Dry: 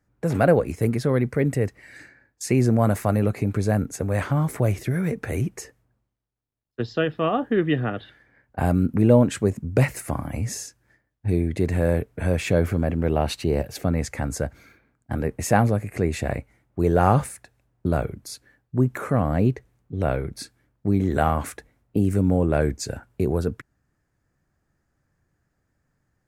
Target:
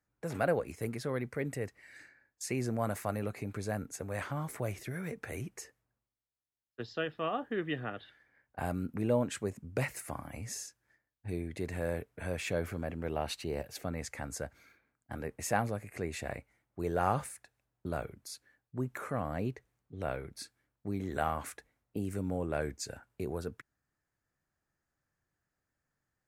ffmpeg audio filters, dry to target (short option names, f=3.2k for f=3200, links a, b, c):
-af "lowshelf=f=470:g=-9,volume=-8dB"